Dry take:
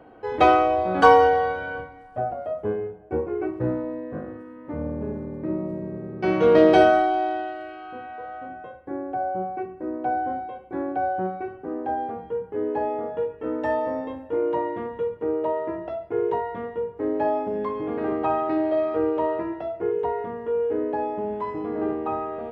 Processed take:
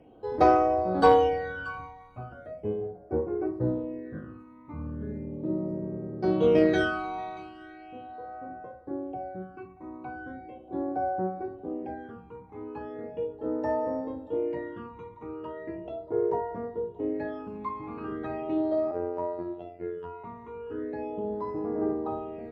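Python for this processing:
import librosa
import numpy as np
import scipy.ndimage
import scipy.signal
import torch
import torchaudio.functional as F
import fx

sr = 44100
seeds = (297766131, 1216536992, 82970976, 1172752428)

y = x + 10.0 ** (-18.5 / 20.0) * np.pad(x, (int(632 * sr / 1000.0), 0))[:len(x)]
y = fx.phaser_stages(y, sr, stages=12, low_hz=520.0, high_hz=3200.0, hz=0.38, feedback_pct=40)
y = fx.robotise(y, sr, hz=87.5, at=(18.91, 20.24))
y = fx.cheby_harmonics(y, sr, harmonics=(3,), levels_db=(-22,), full_scale_db=-5.0)
y = y * librosa.db_to_amplitude(-1.5)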